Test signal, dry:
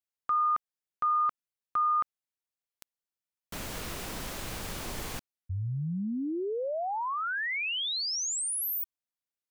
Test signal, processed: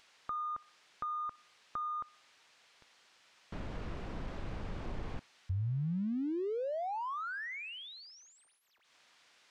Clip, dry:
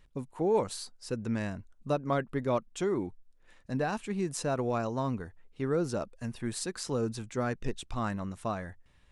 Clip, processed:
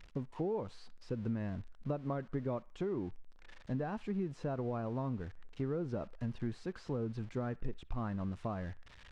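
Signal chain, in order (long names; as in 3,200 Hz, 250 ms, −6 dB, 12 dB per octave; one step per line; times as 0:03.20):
spike at every zero crossing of −29.5 dBFS
low-shelf EQ 140 Hz +4.5 dB
downward compressor 5 to 1, threshold −33 dBFS
head-to-tape spacing loss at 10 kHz 41 dB
on a send: feedback echo with a band-pass in the loop 63 ms, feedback 54%, band-pass 1,700 Hz, level −21 dB
on the sum: level +1 dB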